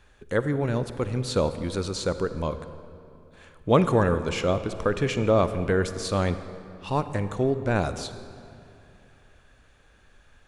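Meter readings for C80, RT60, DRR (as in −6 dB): 12.0 dB, 2.7 s, 11.0 dB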